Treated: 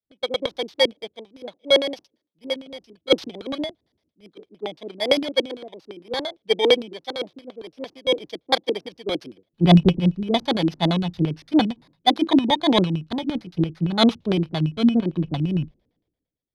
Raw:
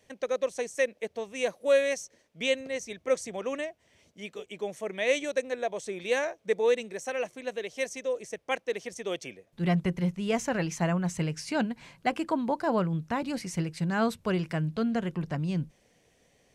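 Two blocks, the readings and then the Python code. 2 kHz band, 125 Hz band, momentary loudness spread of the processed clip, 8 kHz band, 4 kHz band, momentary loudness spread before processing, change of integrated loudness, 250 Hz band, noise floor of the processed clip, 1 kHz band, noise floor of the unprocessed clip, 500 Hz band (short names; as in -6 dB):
+2.0 dB, +8.5 dB, 17 LU, -4.5 dB, +16.0 dB, 9 LU, +8.5 dB, +10.0 dB, -80 dBFS, +7.0 dB, -67 dBFS, +4.5 dB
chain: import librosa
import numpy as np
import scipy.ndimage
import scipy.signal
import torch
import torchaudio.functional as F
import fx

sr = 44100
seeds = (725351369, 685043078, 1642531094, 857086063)

y = fx.bit_reversed(x, sr, seeds[0], block=16)
y = fx.dynamic_eq(y, sr, hz=830.0, q=2.1, threshold_db=-46.0, ratio=4.0, max_db=7)
y = fx.rider(y, sr, range_db=10, speed_s=2.0)
y = fx.filter_lfo_lowpass(y, sr, shape='square', hz=8.8, low_hz=310.0, high_hz=3700.0, q=3.8)
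y = fx.band_widen(y, sr, depth_pct=100)
y = y * librosa.db_to_amplitude(3.5)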